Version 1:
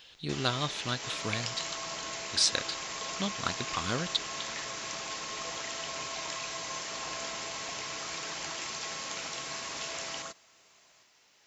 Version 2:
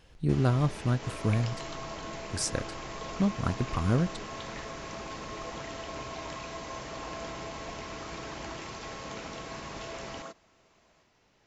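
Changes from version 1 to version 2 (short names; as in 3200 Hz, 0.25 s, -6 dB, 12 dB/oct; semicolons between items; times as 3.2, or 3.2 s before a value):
speech: remove synth low-pass 3800 Hz, resonance Q 3.4; second sound: add HPF 250 Hz 12 dB/oct; master: add tilt -4 dB/oct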